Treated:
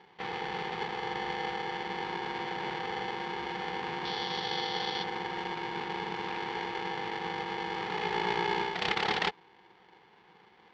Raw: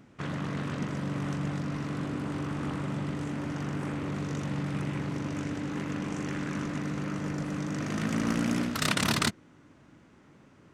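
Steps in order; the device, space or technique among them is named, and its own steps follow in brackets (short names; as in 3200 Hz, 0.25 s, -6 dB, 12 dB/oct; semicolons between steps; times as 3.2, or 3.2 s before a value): ring modulator pedal into a guitar cabinet (polarity switched at an audio rate 640 Hz; speaker cabinet 80–4000 Hz, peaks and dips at 89 Hz -8 dB, 180 Hz +9 dB, 280 Hz -9 dB, 550 Hz -9 dB); 4.05–5.04 band shelf 4300 Hz +11 dB 1 oct; gain -1 dB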